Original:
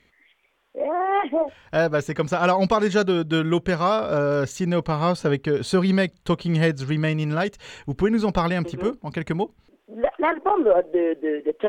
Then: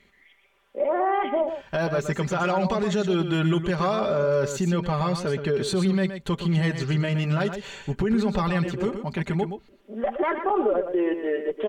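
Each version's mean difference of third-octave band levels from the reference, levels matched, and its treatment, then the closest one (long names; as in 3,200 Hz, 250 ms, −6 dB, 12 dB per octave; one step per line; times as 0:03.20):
4.0 dB: comb filter 5.1 ms, depth 58%
brickwall limiter −16 dBFS, peak gain reduction 11.5 dB
on a send: single-tap delay 120 ms −8.5 dB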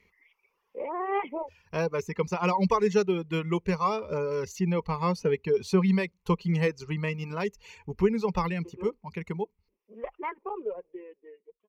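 5.5 dB: fade-out on the ending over 3.58 s
reverb reduction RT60 0.98 s
EQ curve with evenly spaced ripples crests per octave 0.82, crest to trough 12 dB
level −7 dB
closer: first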